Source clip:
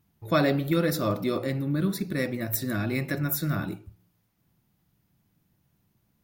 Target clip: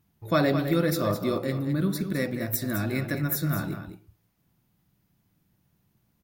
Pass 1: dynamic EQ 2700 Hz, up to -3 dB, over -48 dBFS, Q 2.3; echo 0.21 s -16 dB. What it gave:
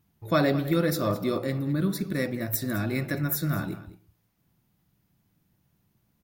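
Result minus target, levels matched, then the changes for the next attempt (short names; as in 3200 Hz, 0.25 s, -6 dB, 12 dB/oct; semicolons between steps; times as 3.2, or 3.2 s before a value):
echo-to-direct -6.5 dB
change: echo 0.21 s -9.5 dB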